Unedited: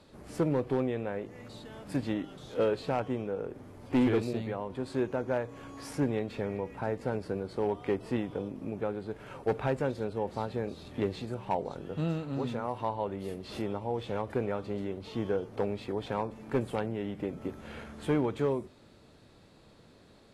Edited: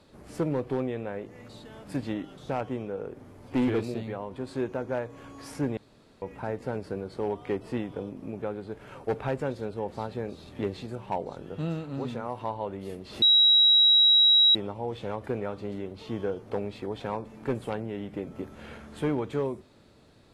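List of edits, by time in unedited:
2.49–2.88 s: delete
6.16–6.61 s: room tone
13.61 s: add tone 3.86 kHz -15.5 dBFS 1.33 s

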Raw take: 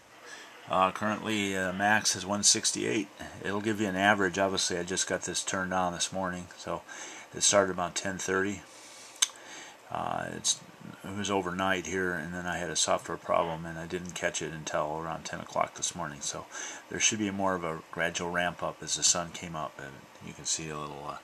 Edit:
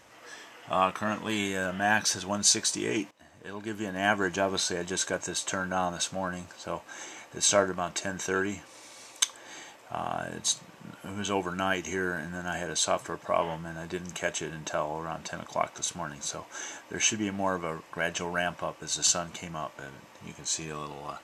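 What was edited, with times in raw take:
3.11–4.38 s: fade in, from -19 dB

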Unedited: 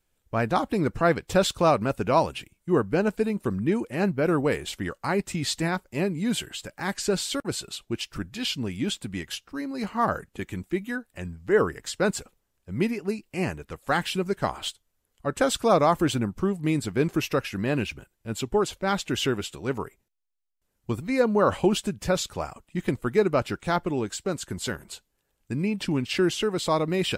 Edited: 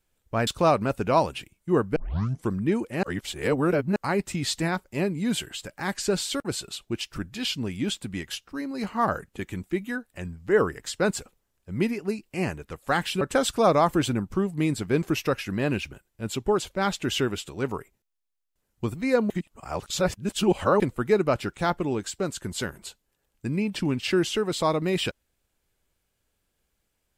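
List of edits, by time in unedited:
0.47–1.47 s: delete
2.96 s: tape start 0.55 s
4.03–4.96 s: reverse
14.21–15.27 s: delete
21.36–22.86 s: reverse

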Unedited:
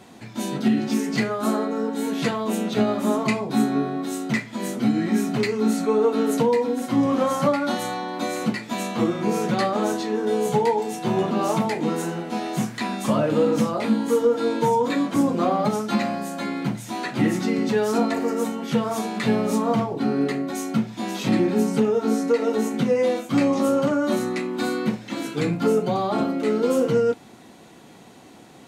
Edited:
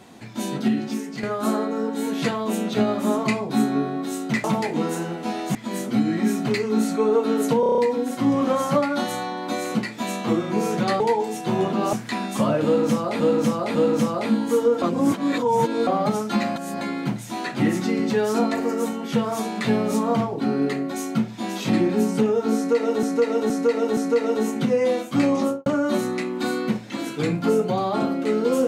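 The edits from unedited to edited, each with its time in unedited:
0.55–1.23 s: fade out, to -11 dB
6.49 s: stutter 0.03 s, 7 plays
9.71–10.58 s: delete
11.51–12.62 s: move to 4.44 s
13.34–13.89 s: loop, 3 plays
14.41–15.46 s: reverse
16.15–16.40 s: reverse
22.15–22.62 s: loop, 4 plays
23.59–23.84 s: studio fade out

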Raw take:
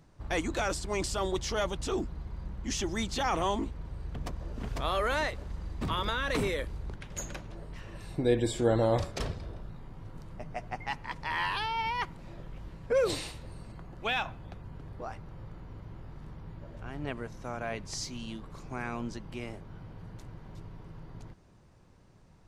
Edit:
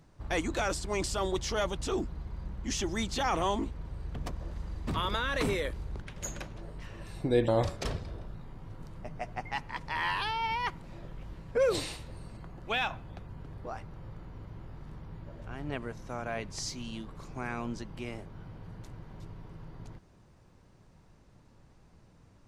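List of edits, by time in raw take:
4.51–5.45 s: delete
8.42–8.83 s: delete

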